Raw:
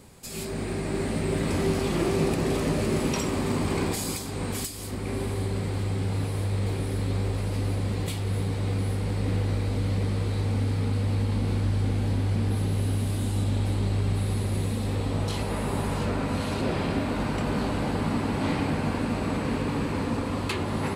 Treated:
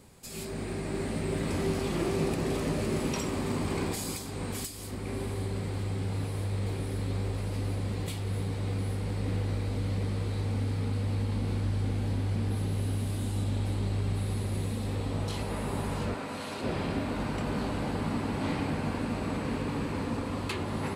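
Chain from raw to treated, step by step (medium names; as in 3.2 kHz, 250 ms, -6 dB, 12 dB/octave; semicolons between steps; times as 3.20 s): 16.14–16.64 s: high-pass 420 Hz 6 dB/octave; trim -4.5 dB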